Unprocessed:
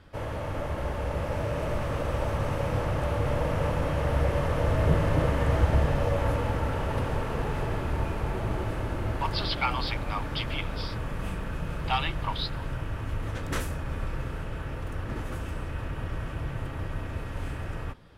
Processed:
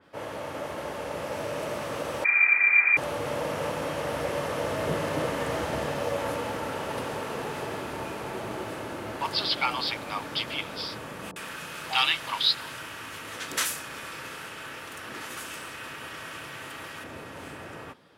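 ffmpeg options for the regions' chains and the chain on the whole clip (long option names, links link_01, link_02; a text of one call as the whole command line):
ffmpeg -i in.wav -filter_complex "[0:a]asettb=1/sr,asplit=3[link_01][link_02][link_03];[link_01]atrim=end=2.244[link_04];[link_02]atrim=start=2.24:end=2.97,asetpts=PTS-STARTPTS,afade=type=in:duration=0.004:curve=qsin,afade=type=out:start_time=0.726:duration=0.004:curve=qsin,equalizer=frequency=130:width_type=o:width=0.44:gain=14,lowpass=frequency=2100:width_type=q:width=0.5098,lowpass=frequency=2100:width_type=q:width=0.6013,lowpass=frequency=2100:width_type=q:width=0.9,lowpass=frequency=2100:width_type=q:width=2.563,afreqshift=-2500[link_05];[link_03]atrim=start=2.966[link_06];[link_04][link_05]acrossfade=duration=0.004:curve1=hsin:curve2=qsin[link_07];[link_07][link_06]acrossfade=duration=0.004:curve1=qsin:curve2=hsin,asettb=1/sr,asplit=3[link_08][link_09][link_10];[link_08]atrim=end=11.314[link_11];[link_09]atrim=start=11.31:end=17.04,asetpts=PTS-STARTPTS,afade=type=in:duration=0.004:curve=qsin,afade=type=out:start_time=5.726:duration=0.004:curve=qsin,tiltshelf=frequency=680:gain=-6.5,acrossover=split=700[link_12][link_13];[link_13]adelay=50[link_14];[link_12][link_14]amix=inputs=2:normalize=0,atrim=end_sample=252693[link_15];[link_10]atrim=start=17.036[link_16];[link_11][link_15]acrossfade=duration=0.004:curve1=hsin:curve2=qsin[link_17];[link_17][link_16]acrossfade=duration=0.004:curve1=qsin:curve2=hsin,highpass=230,adynamicequalizer=threshold=0.00447:dfrequency=3000:dqfactor=0.7:tfrequency=3000:tqfactor=0.7:attack=5:release=100:ratio=0.375:range=3.5:mode=boostabove:tftype=highshelf" out.wav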